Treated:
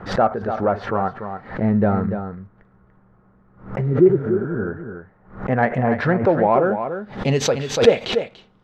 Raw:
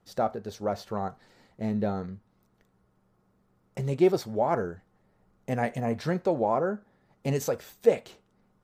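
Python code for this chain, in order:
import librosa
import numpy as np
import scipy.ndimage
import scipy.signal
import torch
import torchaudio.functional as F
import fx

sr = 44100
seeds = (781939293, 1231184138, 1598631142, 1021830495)

p1 = fx.filter_sweep_lowpass(x, sr, from_hz=1600.0, to_hz=3500.0, start_s=6.19, end_s=6.8, q=1.8)
p2 = 10.0 ** (-19.0 / 20.0) * np.tanh(p1 / 10.0 ** (-19.0 / 20.0))
p3 = p1 + F.gain(torch.from_numpy(p2), -9.0).numpy()
p4 = fx.low_shelf(p3, sr, hz=140.0, db=6.5, at=(1.62, 3.78))
p5 = fx.spec_repair(p4, sr, seeds[0], start_s=3.9, length_s=0.74, low_hz=410.0, high_hz=11000.0, source='both')
p6 = p5 + fx.echo_single(p5, sr, ms=290, db=-8.5, dry=0)
p7 = fx.pre_swell(p6, sr, db_per_s=130.0)
y = F.gain(torch.from_numpy(p7), 6.0).numpy()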